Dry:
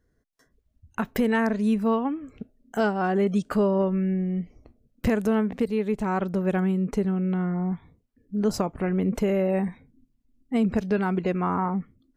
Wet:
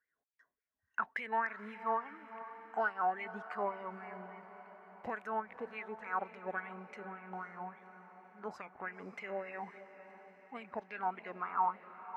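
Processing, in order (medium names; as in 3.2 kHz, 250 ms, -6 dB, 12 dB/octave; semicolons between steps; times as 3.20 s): wah-wah 3.5 Hz 790–2300 Hz, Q 7; echo that smears into a reverb 531 ms, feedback 57%, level -13 dB; trim +3 dB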